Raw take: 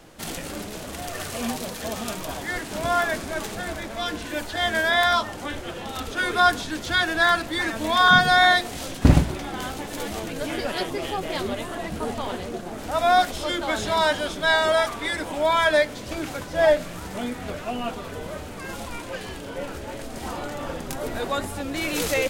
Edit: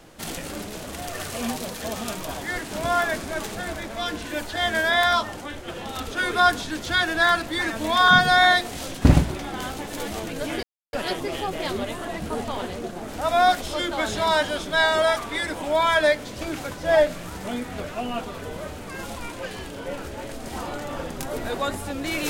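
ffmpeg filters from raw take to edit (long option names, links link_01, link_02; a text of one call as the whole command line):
ffmpeg -i in.wav -filter_complex "[0:a]asplit=4[link_01][link_02][link_03][link_04];[link_01]atrim=end=5.412[link_05];[link_02]atrim=start=5.408:end=5.682,asetpts=PTS-STARTPTS,volume=-3.5dB[link_06];[link_03]atrim=start=5.678:end=10.63,asetpts=PTS-STARTPTS,afade=type=out:start_time=4.948:duration=0.004:curve=hsin,apad=pad_dur=0.3[link_07];[link_04]atrim=start=10.63,asetpts=PTS-STARTPTS,afade=type=in:duration=0.004:curve=hsin[link_08];[link_05][link_06]acrossfade=duration=0.004:curve1=hsin:curve2=hsin[link_09];[link_07][link_08]concat=n=2:v=0:a=1[link_10];[link_09][link_10]acrossfade=duration=0.004:curve1=hsin:curve2=hsin" out.wav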